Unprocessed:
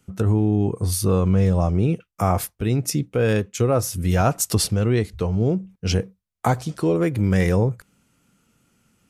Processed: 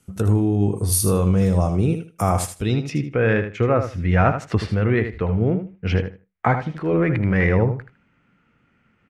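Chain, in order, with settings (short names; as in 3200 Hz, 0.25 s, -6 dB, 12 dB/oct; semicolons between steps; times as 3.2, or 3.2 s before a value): low-pass sweep 11000 Hz -> 2000 Hz, 2.3–3.02; 6.74–7.45 transient shaper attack -7 dB, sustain +7 dB; feedback echo 78 ms, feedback 18%, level -9 dB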